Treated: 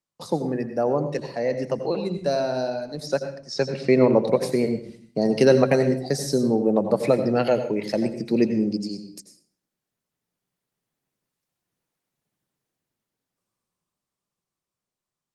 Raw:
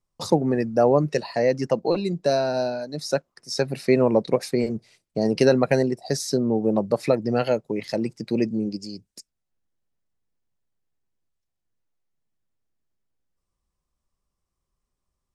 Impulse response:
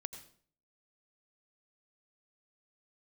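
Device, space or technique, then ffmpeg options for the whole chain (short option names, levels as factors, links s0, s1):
far-field microphone of a smart speaker: -filter_complex "[0:a]asettb=1/sr,asplit=3[s0][s1][s2];[s0]atrim=end=3.064[s3];[s1]atrim=start=3.06:end=4.24,asetpts=PTS-STARTPTS,afade=t=in:d=0.004:c=qsin,afade=t=out:st=1.176:d=0.004:c=qsin,lowpass=f=6500:w=0.5412,lowpass=f=6500:w=1.3066[s4];[s2]atrim=start=4.236[s5];[s3][s4]acrossfade=d=0.004:c1=hsin:c2=qsin[s6];[s6][s5]acrossfade=d=0.004:c1=qsin:c2=hsin[s7];[1:a]atrim=start_sample=2205[s8];[s7][s8]afir=irnorm=-1:irlink=0,highpass=f=120:w=0.5412,highpass=f=120:w=1.3066,dynaudnorm=f=260:g=21:m=5.96,volume=0.794" -ar 48000 -c:a libopus -b:a 32k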